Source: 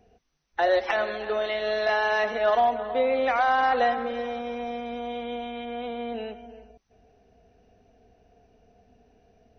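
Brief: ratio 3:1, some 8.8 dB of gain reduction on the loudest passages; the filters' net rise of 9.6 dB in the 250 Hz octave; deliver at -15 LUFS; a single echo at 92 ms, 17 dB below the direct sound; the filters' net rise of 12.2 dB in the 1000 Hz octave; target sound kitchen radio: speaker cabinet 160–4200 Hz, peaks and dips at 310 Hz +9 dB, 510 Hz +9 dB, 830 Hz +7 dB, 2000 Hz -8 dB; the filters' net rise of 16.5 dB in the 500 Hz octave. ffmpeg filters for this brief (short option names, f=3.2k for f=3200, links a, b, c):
-af "equalizer=f=250:t=o:g=6,equalizer=f=500:t=o:g=8.5,equalizer=f=1k:t=o:g=5,acompressor=threshold=-22dB:ratio=3,highpass=160,equalizer=f=310:t=q:w=4:g=9,equalizer=f=510:t=q:w=4:g=9,equalizer=f=830:t=q:w=4:g=7,equalizer=f=2k:t=q:w=4:g=-8,lowpass=f=4.2k:w=0.5412,lowpass=f=4.2k:w=1.3066,aecho=1:1:92:0.141,volume=3.5dB"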